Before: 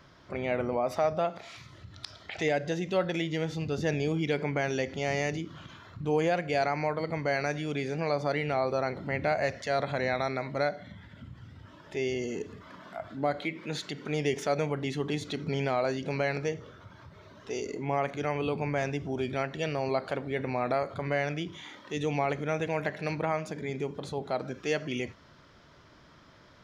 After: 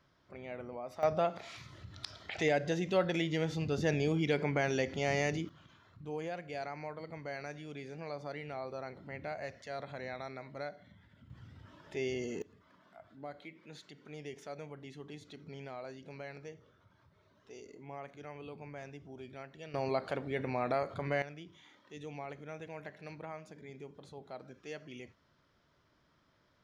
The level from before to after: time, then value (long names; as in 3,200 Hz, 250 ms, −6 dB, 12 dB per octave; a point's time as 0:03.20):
−14 dB
from 0:01.03 −2 dB
from 0:05.49 −13 dB
from 0:11.30 −5 dB
from 0:12.42 −16.5 dB
from 0:19.74 −4 dB
from 0:21.22 −15 dB